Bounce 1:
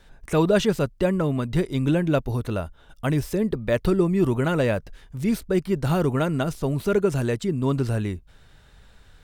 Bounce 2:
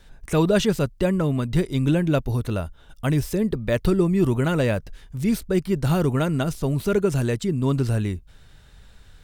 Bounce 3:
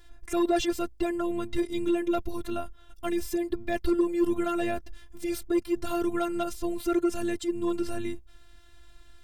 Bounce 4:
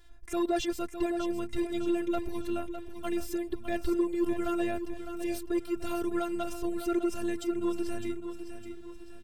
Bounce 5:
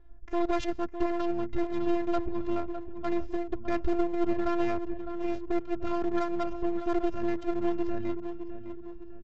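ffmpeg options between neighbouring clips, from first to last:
-af "equalizer=f=800:w=0.31:g=-4.5,volume=3.5dB"
-af "afftfilt=real='hypot(re,im)*cos(PI*b)':imag='0':win_size=512:overlap=0.75,asoftclip=type=tanh:threshold=-15.5dB"
-af "aecho=1:1:607|1214|1821|2428|3035:0.335|0.147|0.0648|0.0285|0.0126,volume=-4dB"
-af "adynamicsmooth=sensitivity=4:basefreq=890,aresample=16000,aeval=exprs='max(val(0),0)':c=same,aresample=44100,volume=4dB"

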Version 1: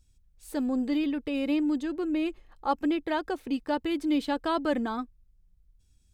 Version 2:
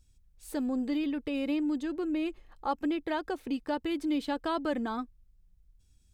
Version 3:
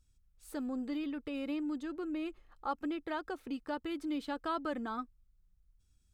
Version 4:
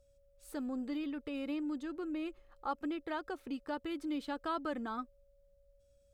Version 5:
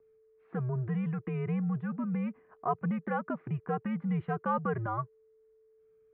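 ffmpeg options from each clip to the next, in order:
-af "acompressor=threshold=-33dB:ratio=1.5"
-af "equalizer=f=1.3k:w=3.6:g=7.5,volume=-6.5dB"
-af "aeval=exprs='val(0)+0.000447*sin(2*PI*560*n/s)':c=same,volume=-1dB"
-af "highpass=f=200:t=q:w=0.5412,highpass=f=200:t=q:w=1.307,lowpass=f=2.2k:t=q:w=0.5176,lowpass=f=2.2k:t=q:w=0.7071,lowpass=f=2.2k:t=q:w=1.932,afreqshift=-120,volume=6.5dB"

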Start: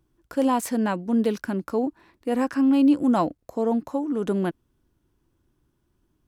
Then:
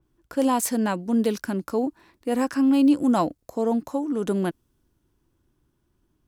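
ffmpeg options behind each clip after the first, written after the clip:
-af "adynamicequalizer=threshold=0.00447:dfrequency=3900:dqfactor=0.7:tfrequency=3900:tqfactor=0.7:attack=5:release=100:ratio=0.375:range=3.5:mode=boostabove:tftype=highshelf"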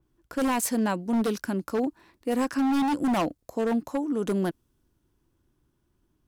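-af "aeval=exprs='0.133*(abs(mod(val(0)/0.133+3,4)-2)-1)':c=same,volume=-1.5dB"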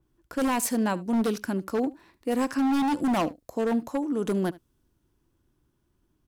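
-af "aecho=1:1:74:0.0944"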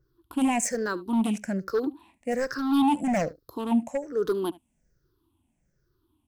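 -af "afftfilt=real='re*pow(10,19/40*sin(2*PI*(0.57*log(max(b,1)*sr/1024/100)/log(2)-(-1.2)*(pts-256)/sr)))':imag='im*pow(10,19/40*sin(2*PI*(0.57*log(max(b,1)*sr/1024/100)/log(2)-(-1.2)*(pts-256)/sr)))':win_size=1024:overlap=0.75,volume=-4.5dB"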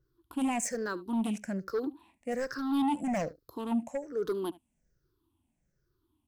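-af "asoftclip=type=tanh:threshold=-16dB,volume=-5dB"

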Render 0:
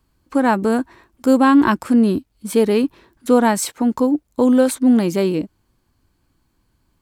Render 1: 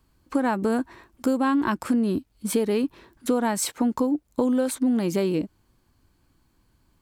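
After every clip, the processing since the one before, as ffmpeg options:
-af "acompressor=threshold=-20dB:ratio=6"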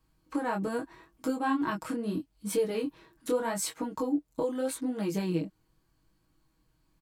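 -af "aecho=1:1:6.3:0.65,flanger=delay=19.5:depth=6.6:speed=0.8,volume=-4.5dB"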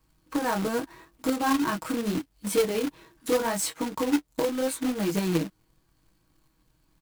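-af "acrusher=bits=2:mode=log:mix=0:aa=0.000001,volume=3.5dB"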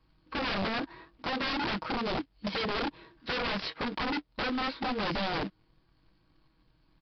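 -af "aresample=16000,aeval=exprs='(mod(17.8*val(0)+1,2)-1)/17.8':c=same,aresample=44100,aresample=11025,aresample=44100"

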